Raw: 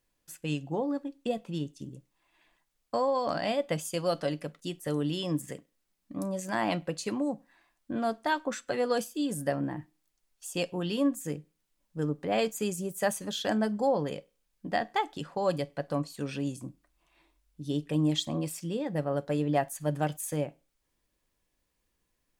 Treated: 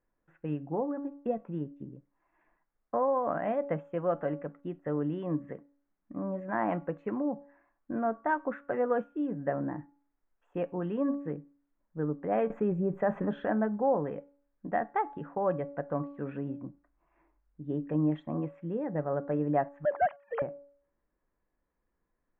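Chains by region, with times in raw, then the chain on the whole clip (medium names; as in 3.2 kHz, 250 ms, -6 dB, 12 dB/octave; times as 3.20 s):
12.50–13.45 s: treble shelf 2 kHz -9 dB + level flattener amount 70%
19.85–20.42 s: formants replaced by sine waves + high-pass 630 Hz 24 dB/octave + waveshaping leveller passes 2
whole clip: inverse Chebyshev low-pass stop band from 4.4 kHz, stop band 50 dB; peaking EQ 94 Hz -6 dB 1.2 oct; de-hum 283.4 Hz, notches 5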